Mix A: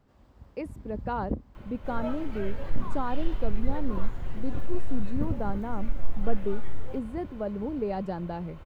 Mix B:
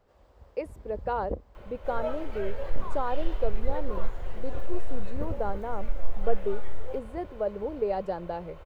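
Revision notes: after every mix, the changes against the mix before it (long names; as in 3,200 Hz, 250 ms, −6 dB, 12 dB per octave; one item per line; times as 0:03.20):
master: add graphic EQ with 10 bands 125 Hz −7 dB, 250 Hz −10 dB, 500 Hz +8 dB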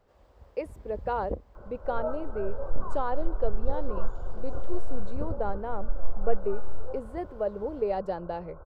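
second sound: add linear-phase brick-wall low-pass 1,600 Hz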